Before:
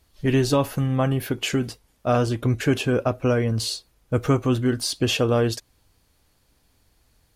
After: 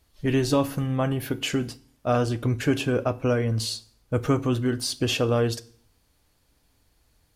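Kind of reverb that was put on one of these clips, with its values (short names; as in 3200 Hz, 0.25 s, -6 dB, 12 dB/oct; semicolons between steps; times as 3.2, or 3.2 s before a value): FDN reverb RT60 0.54 s, low-frequency decay 1.25×, high-frequency decay 0.95×, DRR 14.5 dB; gain -2.5 dB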